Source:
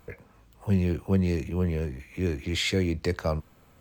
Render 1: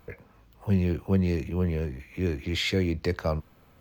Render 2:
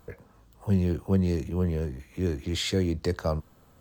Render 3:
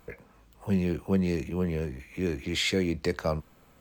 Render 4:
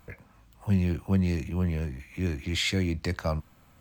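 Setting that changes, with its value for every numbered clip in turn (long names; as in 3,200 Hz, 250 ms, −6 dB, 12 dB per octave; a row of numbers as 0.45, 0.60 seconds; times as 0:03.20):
parametric band, centre frequency: 8,100, 2,300, 94, 430 Hertz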